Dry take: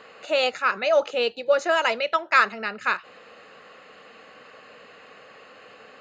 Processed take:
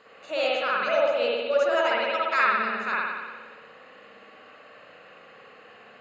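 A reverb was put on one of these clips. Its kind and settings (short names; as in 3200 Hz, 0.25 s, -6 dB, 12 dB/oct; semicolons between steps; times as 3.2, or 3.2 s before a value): spring tank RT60 1.4 s, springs 58 ms, chirp 40 ms, DRR -6 dB; gain -8.5 dB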